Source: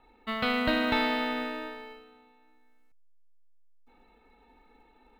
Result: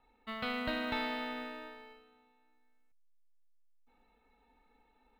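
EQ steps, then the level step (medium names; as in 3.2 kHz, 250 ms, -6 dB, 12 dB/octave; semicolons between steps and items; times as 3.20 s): peaking EQ 350 Hz -8 dB 0.33 oct; -8.5 dB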